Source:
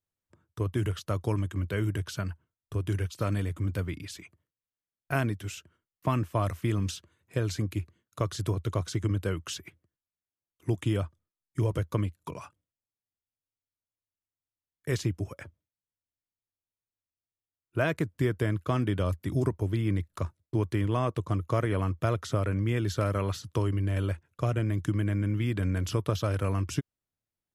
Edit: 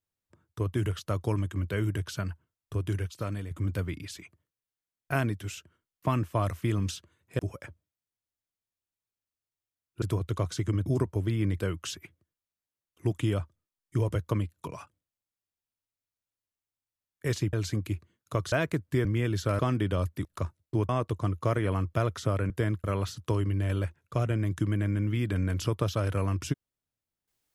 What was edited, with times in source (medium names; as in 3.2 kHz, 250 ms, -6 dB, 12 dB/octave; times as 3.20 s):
2.81–3.51 s: fade out, to -8 dB
7.39–8.38 s: swap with 15.16–17.79 s
18.32–18.66 s: swap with 22.57–23.11 s
19.32–20.05 s: move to 9.22 s
20.69–20.96 s: delete